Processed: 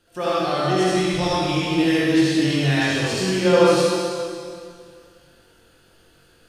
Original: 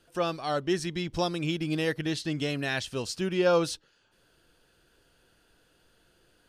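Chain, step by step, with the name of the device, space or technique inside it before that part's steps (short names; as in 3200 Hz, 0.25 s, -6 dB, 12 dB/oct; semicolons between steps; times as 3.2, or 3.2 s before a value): tunnel (flutter echo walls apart 3.7 m, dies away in 0.2 s; reverb RT60 2.2 s, pre-delay 51 ms, DRR -8 dB)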